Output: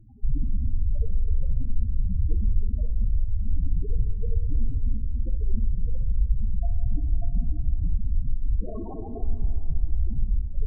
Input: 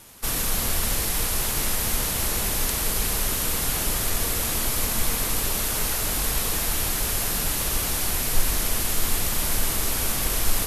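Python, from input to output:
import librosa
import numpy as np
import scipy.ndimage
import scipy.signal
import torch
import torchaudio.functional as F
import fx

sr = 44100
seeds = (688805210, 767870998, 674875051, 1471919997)

p1 = scipy.ndimage.median_filter(x, 15, mode='constant')
p2 = fx.highpass(p1, sr, hz=240.0, slope=6, at=(8.6, 9.23))
p3 = fx.over_compress(p2, sr, threshold_db=-27.0, ratio=-1.0)
p4 = fx.spec_topn(p3, sr, count=4)
p5 = p4 + fx.room_flutter(p4, sr, wall_m=10.2, rt60_s=0.29, dry=0)
p6 = fx.rev_schroeder(p5, sr, rt60_s=3.0, comb_ms=26, drr_db=8.0)
y = p6 * 10.0 ** (7.5 / 20.0)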